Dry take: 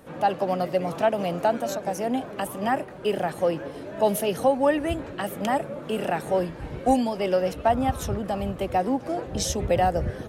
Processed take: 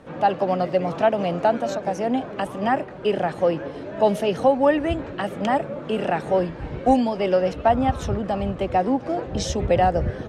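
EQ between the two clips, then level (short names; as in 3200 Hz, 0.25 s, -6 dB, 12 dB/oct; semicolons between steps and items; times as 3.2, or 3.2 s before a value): air absorption 95 m; +3.5 dB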